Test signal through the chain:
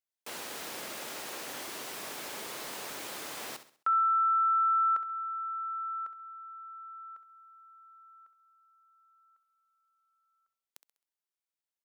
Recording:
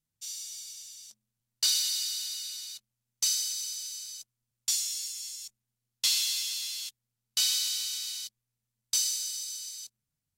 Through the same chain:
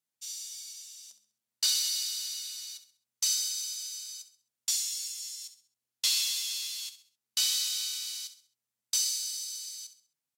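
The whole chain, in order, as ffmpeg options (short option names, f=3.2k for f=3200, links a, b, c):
-af "highpass=350,aecho=1:1:66|132|198|264:0.251|0.0955|0.0363|0.0138,volume=-1dB"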